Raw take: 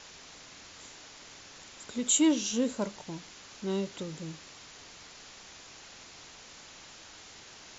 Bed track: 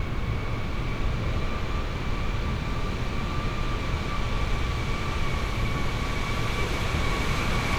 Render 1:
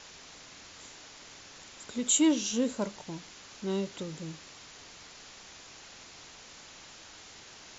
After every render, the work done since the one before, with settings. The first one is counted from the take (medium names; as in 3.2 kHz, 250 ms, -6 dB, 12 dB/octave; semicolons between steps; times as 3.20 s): no audible change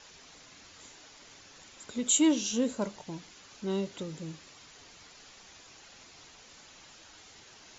noise reduction 6 dB, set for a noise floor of -51 dBFS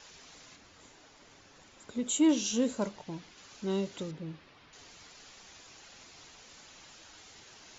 0.56–2.29 s: treble shelf 2 kHz -8 dB; 2.89–3.38 s: distance through air 88 m; 4.11–4.73 s: distance through air 260 m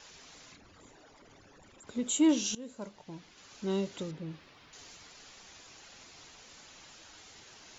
0.52–1.87 s: resonances exaggerated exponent 2; 2.55–3.64 s: fade in, from -20 dB; 4.31–4.97 s: treble shelf 5.5 kHz +6 dB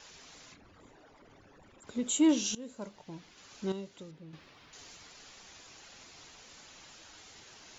0.54–1.82 s: treble shelf 4.5 kHz -12 dB; 3.72–4.33 s: gain -9.5 dB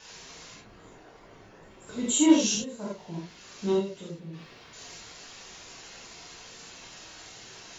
gated-style reverb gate 110 ms flat, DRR -6 dB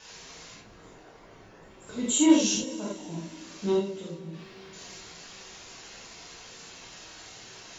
plate-style reverb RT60 4.1 s, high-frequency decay 0.85×, DRR 14 dB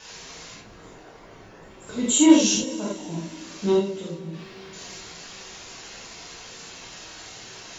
trim +5 dB